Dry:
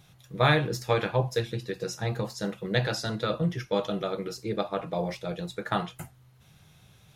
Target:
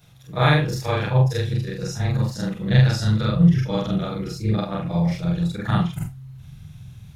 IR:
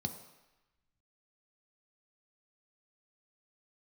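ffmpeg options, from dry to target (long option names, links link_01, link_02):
-af "afftfilt=real='re':imag='-im':win_size=4096:overlap=0.75,asubboost=boost=8:cutoff=160,volume=7.5dB"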